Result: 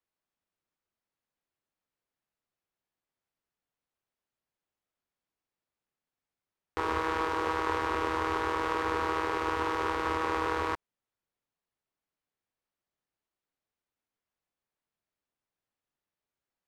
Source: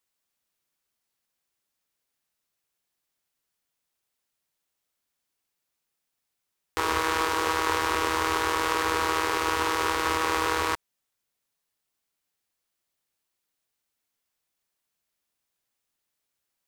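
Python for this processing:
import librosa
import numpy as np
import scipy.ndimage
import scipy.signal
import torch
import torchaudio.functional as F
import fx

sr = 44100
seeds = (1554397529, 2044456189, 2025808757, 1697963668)

y = fx.lowpass(x, sr, hz=1300.0, slope=6)
y = F.gain(torch.from_numpy(y), -2.0).numpy()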